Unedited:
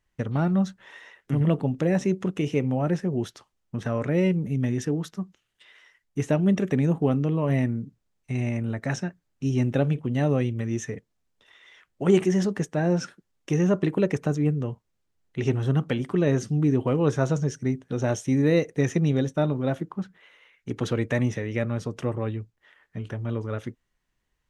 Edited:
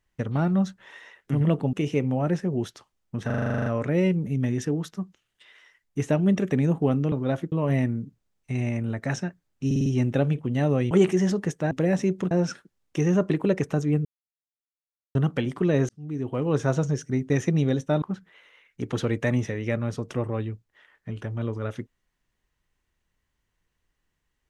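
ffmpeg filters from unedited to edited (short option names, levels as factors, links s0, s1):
-filter_complex "[0:a]asplit=26[s0][s1][s2][s3][s4][s5][s6][s7][s8][s9][s10][s11][s12][s13][s14][s15][s16][s17][s18][s19][s20][s21][s22][s23][s24][s25];[s0]atrim=end=1.732[s26];[s1]atrim=start=2.328:end=3.902[s27];[s2]atrim=start=3.858:end=3.902[s28];[s3]atrim=start=3.858:end=3.902[s29];[s4]atrim=start=3.858:end=3.902[s30];[s5]atrim=start=3.858:end=3.902[s31];[s6]atrim=start=3.858:end=3.902[s32];[s7]atrim=start=3.858:end=3.902[s33];[s8]atrim=start=3.858:end=3.902[s34];[s9]atrim=start=3.858:end=3.902[s35];[s10]atrim=start=3.858:end=3.902[s36];[s11]atrim=start=3.858:end=7.322[s37];[s12]atrim=start=19.498:end=19.902[s38];[s13]atrim=start=7.318:end=9.512[s39];[s14]atrim=start=9.458:end=9.512[s40];[s15]atrim=start=9.458:end=9.512[s41];[s16]atrim=start=9.458:end=9.512[s42];[s17]atrim=start=9.458:end=10.512[s43];[s18]atrim=start=12.038:end=12.842[s44];[s19]atrim=start=1.728:end=2.332[s45];[s20]atrim=start=12.838:end=14.58,asetpts=PTS-STARTPTS,afade=t=out:st=1.738:d=0.004:c=hsin[s46];[s21]atrim=start=14.58:end=15.68,asetpts=PTS-STARTPTS,volume=0[s47];[s22]atrim=start=15.68:end=16.42,asetpts=PTS-STARTPTS,afade=t=in:d=0.004:c=hsin,afade=t=out:st=0.736:d=0.004:c=hsin[s48];[s23]atrim=start=16.42:end=17.832,asetpts=PTS-STARTPTS,afade=t=in:d=0.76[s49];[s24]atrim=start=18.778:end=19.502[s50];[s25]atrim=start=19.898[s51];[s26][s27]acrossfade=d=0.004:c1=hsin:c2=hsin[s52];[s52][s28]acrossfade=d=0.004:c1=hsin:c2=hsin[s53];[s53][s29]acrossfade=d=0.004:c1=hsin:c2=hsin[s54];[s54][s30]acrossfade=d=0.004:c1=hsin:c2=hsin[s55];[s55][s31]acrossfade=d=0.004:c1=hsin:c2=hsin[s56];[s56][s32]acrossfade=d=0.004:c1=hsin:c2=hsin[s57];[s57][s33]acrossfade=d=0.004:c1=hsin:c2=hsin[s58];[s58][s34]acrossfade=d=0.004:c1=hsin:c2=hsin[s59];[s59][s35]acrossfade=d=0.004:c1=hsin:c2=hsin[s60];[s60][s36]acrossfade=d=0.004:c1=hsin:c2=hsin[s61];[s61][s37]acrossfade=d=0.004:c1=hsin:c2=hsin[s62];[s62][s38]acrossfade=d=0.004:c1=hsin:c2=hsin[s63];[s63][s39]acrossfade=d=0.004:c1=hsin:c2=hsin[s64];[s64][s40]acrossfade=d=0.004:c1=hsin:c2=hsin[s65];[s65][s41]acrossfade=d=0.004:c1=hsin:c2=hsin[s66];[s66][s42]acrossfade=d=0.004:c1=hsin:c2=hsin[s67];[s67][s43]acrossfade=d=0.004:c1=hsin:c2=hsin[s68];[s68][s44]acrossfade=d=0.004:c1=hsin:c2=hsin[s69];[s69][s45]acrossfade=d=0.004:c1=hsin:c2=hsin[s70];[s46][s47][s48][s49]concat=n=4:v=0:a=1[s71];[s70][s71]acrossfade=d=0.004:c1=hsin:c2=hsin[s72];[s72][s50]acrossfade=d=0.004:c1=hsin:c2=hsin[s73];[s73][s51]acrossfade=d=0.004:c1=hsin:c2=hsin"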